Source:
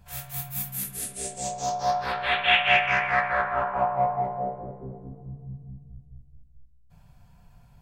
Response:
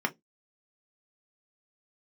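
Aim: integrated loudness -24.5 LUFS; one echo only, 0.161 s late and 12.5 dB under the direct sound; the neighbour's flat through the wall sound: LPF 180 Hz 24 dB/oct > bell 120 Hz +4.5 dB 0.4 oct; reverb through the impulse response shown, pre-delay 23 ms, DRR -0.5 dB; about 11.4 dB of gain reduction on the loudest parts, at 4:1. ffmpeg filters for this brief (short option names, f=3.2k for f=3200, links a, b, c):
-filter_complex "[0:a]acompressor=threshold=-29dB:ratio=4,aecho=1:1:161:0.237,asplit=2[a][b];[1:a]atrim=start_sample=2205,adelay=23[c];[b][c]afir=irnorm=-1:irlink=0,volume=-8dB[d];[a][d]amix=inputs=2:normalize=0,lowpass=f=180:w=0.5412,lowpass=f=180:w=1.3066,equalizer=f=120:t=o:w=0.4:g=4.5,volume=22dB"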